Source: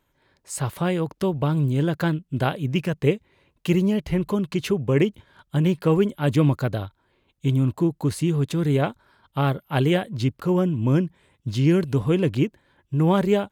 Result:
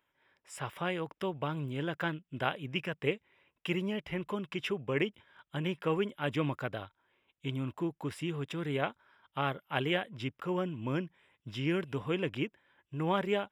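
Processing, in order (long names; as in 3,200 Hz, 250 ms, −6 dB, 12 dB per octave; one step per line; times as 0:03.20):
Savitzky-Golay smoothing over 25 samples
spectral tilt +3.5 dB per octave
level −6.5 dB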